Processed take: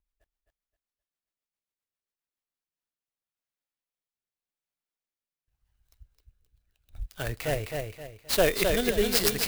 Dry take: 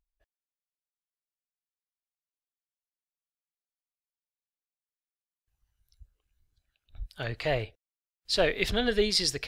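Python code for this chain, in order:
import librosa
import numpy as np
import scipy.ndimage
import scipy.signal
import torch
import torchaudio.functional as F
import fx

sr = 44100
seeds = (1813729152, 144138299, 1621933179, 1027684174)

p1 = fx.level_steps(x, sr, step_db=13)
p2 = x + (p1 * 10.0 ** (-2.5 / 20.0))
p3 = fx.rotary_switch(p2, sr, hz=7.5, then_hz=0.85, switch_at_s=2.17)
p4 = fx.dmg_tone(p3, sr, hz=3600.0, level_db=-41.0, at=(8.36, 8.86), fade=0.02)
p5 = fx.echo_feedback(p4, sr, ms=262, feedback_pct=33, wet_db=-4.5)
y = fx.clock_jitter(p5, sr, seeds[0], jitter_ms=0.039)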